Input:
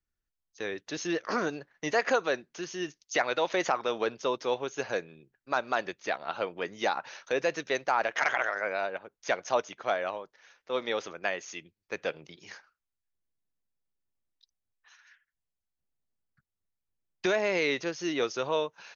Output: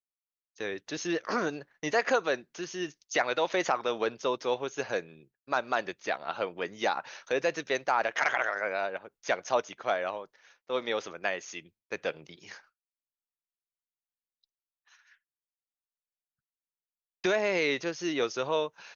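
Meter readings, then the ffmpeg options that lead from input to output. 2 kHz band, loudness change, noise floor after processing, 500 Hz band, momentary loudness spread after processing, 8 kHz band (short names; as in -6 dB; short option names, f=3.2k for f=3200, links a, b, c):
0.0 dB, 0.0 dB, under -85 dBFS, 0.0 dB, 10 LU, n/a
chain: -af "agate=range=-33dB:threshold=-55dB:ratio=3:detection=peak"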